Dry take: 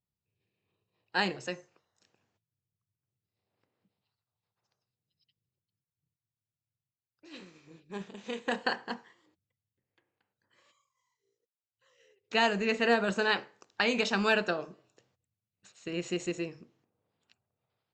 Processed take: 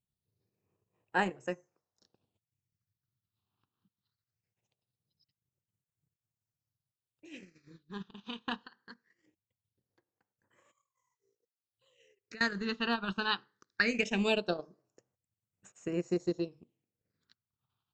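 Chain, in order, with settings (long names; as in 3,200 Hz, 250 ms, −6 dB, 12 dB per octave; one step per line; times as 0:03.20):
0:08.64–0:12.41: downward compressor 4 to 1, threshold −48 dBFS, peak gain reduction 21 dB
transient designer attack +2 dB, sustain −11 dB
all-pass phaser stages 6, 0.21 Hz, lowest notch 540–4,300 Hz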